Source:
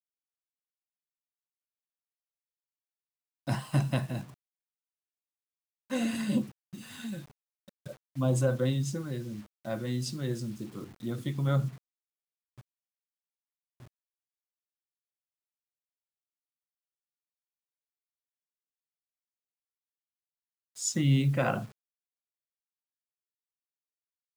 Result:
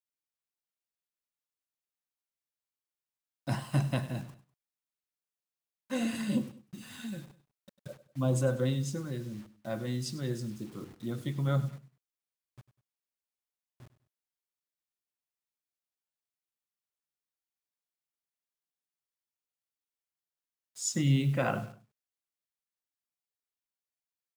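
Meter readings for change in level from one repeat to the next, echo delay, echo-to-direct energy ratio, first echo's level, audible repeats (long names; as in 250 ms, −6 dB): −8.5 dB, 99 ms, −15.5 dB, −16.0 dB, 2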